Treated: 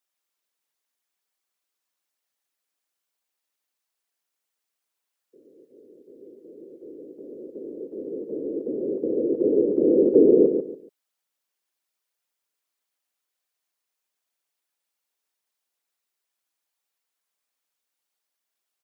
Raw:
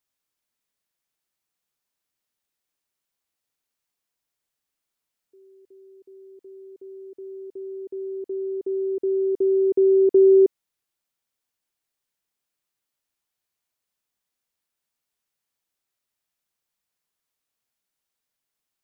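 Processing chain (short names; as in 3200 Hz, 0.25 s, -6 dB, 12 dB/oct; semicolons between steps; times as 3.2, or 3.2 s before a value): HPF 340 Hz; whisperiser; on a send: feedback echo 0.142 s, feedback 26%, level -7 dB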